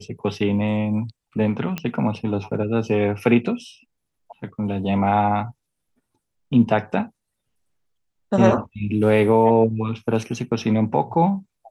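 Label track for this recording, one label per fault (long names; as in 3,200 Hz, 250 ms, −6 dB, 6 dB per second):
1.780000	1.780000	click −12 dBFS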